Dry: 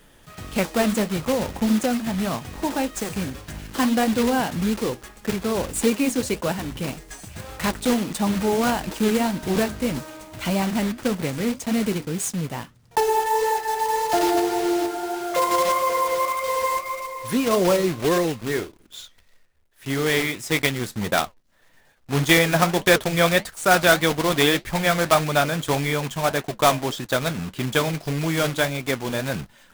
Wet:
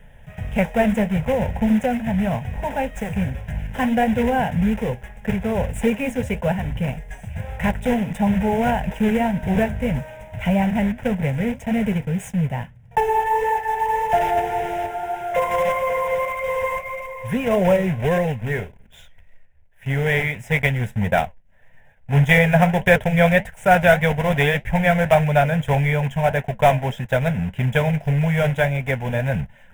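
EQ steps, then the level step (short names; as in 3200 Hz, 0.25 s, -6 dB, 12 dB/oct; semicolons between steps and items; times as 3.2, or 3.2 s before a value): tone controls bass +7 dB, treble -14 dB; fixed phaser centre 1200 Hz, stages 6; +4.5 dB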